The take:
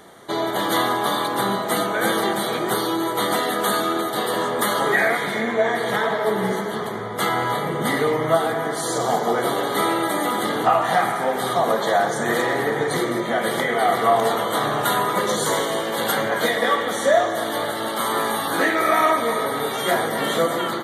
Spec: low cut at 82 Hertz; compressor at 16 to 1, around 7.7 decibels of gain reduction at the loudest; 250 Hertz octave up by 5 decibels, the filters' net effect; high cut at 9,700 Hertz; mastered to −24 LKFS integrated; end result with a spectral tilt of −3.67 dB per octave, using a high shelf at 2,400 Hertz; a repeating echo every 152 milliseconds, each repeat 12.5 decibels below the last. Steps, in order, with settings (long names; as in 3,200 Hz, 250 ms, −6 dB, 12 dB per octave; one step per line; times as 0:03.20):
high-pass filter 82 Hz
low-pass filter 9,700 Hz
parametric band 250 Hz +7 dB
high-shelf EQ 2,400 Hz −4.5 dB
downward compressor 16 to 1, threshold −19 dBFS
repeating echo 152 ms, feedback 24%, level −12.5 dB
level −0.5 dB